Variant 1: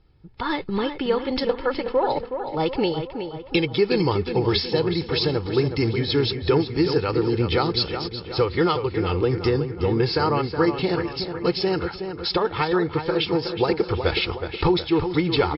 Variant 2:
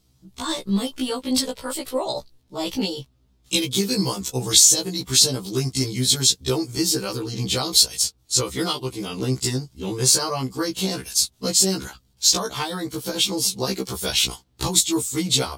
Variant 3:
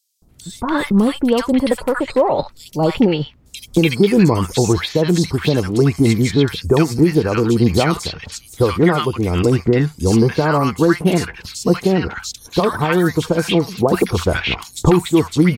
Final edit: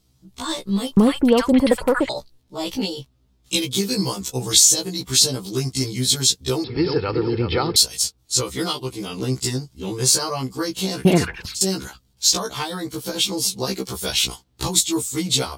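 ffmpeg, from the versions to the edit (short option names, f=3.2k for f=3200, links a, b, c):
-filter_complex "[2:a]asplit=2[a][b];[1:a]asplit=4[c][d][e][f];[c]atrim=end=0.972[g];[a]atrim=start=0.968:end=2.092[h];[d]atrim=start=2.088:end=6.642[i];[0:a]atrim=start=6.638:end=7.762[j];[e]atrim=start=7.758:end=11.052[k];[b]atrim=start=11.048:end=11.612[l];[f]atrim=start=11.608[m];[g][h]acrossfade=d=0.004:c1=hsin:c2=hsin[n];[n][i]acrossfade=d=0.004:c1=hsin:c2=hsin[o];[o][j]acrossfade=d=0.004:c1=hsin:c2=hsin[p];[p][k]acrossfade=d=0.004:c1=hsin:c2=hsin[q];[q][l]acrossfade=d=0.004:c1=hsin:c2=hsin[r];[r][m]acrossfade=d=0.004:c1=hsin:c2=hsin"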